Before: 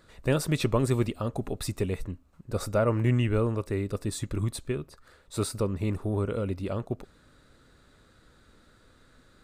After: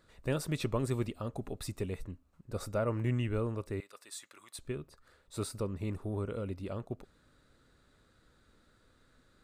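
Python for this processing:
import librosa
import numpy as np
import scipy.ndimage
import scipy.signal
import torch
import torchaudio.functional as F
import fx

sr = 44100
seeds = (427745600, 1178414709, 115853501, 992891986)

y = fx.highpass(x, sr, hz=1100.0, slope=12, at=(3.8, 4.59))
y = F.gain(torch.from_numpy(y), -7.5).numpy()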